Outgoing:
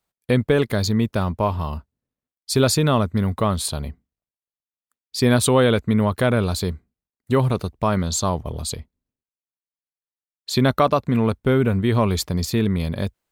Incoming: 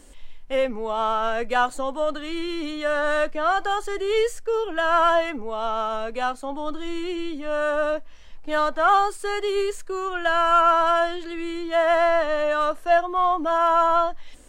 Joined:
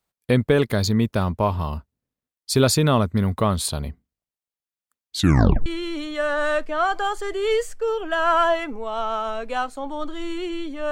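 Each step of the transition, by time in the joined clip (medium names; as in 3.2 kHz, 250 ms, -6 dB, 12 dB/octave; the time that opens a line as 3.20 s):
outgoing
5.11 s: tape stop 0.55 s
5.66 s: go over to incoming from 2.32 s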